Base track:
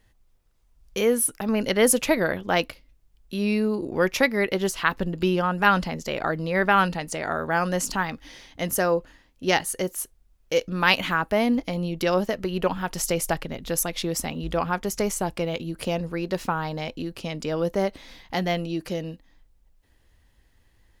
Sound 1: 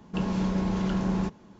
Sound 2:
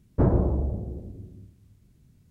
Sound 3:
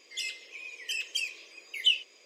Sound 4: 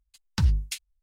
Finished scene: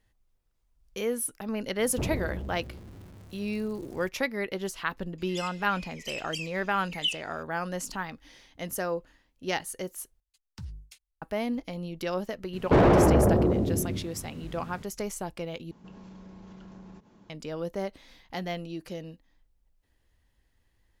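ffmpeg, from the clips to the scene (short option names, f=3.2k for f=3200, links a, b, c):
-filter_complex "[2:a]asplit=2[a][b];[0:a]volume=-8.5dB[c];[a]aeval=exprs='val(0)+0.5*0.02*sgn(val(0))':c=same[d];[4:a]acrossover=split=150|610|1300|4400[e][f][g][h][i];[e]acompressor=threshold=-27dB:ratio=3[j];[f]acompressor=threshold=-40dB:ratio=3[k];[g]acompressor=threshold=-51dB:ratio=3[l];[h]acompressor=threshold=-47dB:ratio=3[m];[i]acompressor=threshold=-42dB:ratio=3[n];[j][k][l][m][n]amix=inputs=5:normalize=0[o];[b]asplit=2[p][q];[q]highpass=f=720:p=1,volume=38dB,asoftclip=type=tanh:threshold=-8dB[r];[p][r]amix=inputs=2:normalize=0,lowpass=f=1.1k:p=1,volume=-6dB[s];[1:a]acompressor=threshold=-40dB:ratio=6:attack=3.2:release=140:knee=1:detection=peak[t];[c]asplit=3[u][v][w];[u]atrim=end=10.204[x];[o]atrim=end=1.02,asetpts=PTS-STARTPTS,volume=-12.5dB[y];[v]atrim=start=11.216:end=15.714[z];[t]atrim=end=1.59,asetpts=PTS-STARTPTS,volume=-5.5dB[aa];[w]atrim=start=17.296[ab];[d]atrim=end=2.3,asetpts=PTS-STARTPTS,volume=-11.5dB,afade=t=in:d=0.004:c=hsin,afade=t=out:st=2.296:d=0.004:c=hsin,adelay=1790[ac];[3:a]atrim=end=2.25,asetpts=PTS-STARTPTS,volume=-4.5dB,afade=t=in:d=0.004:c=hsin,afade=t=out:st=2.246:d=0.004:c=hsin,adelay=5180[ad];[s]atrim=end=2.3,asetpts=PTS-STARTPTS,volume=-3dB,afade=t=in:d=0.004:c=hsin,afade=t=out:st=2.296:d=0.004:c=hsin,adelay=12530[ae];[x][y]acrossfade=d=0.004:c1=hsin:c2=hsin[af];[af][z]acrossfade=d=0.004:c1=hsin:c2=hsin[ag];[ag][aa]acrossfade=d=0.004:c1=hsin:c2=hsin[ah];[ah][ab]acrossfade=d=0.004:c1=hsin:c2=hsin[ai];[ai][ac][ad][ae]amix=inputs=4:normalize=0"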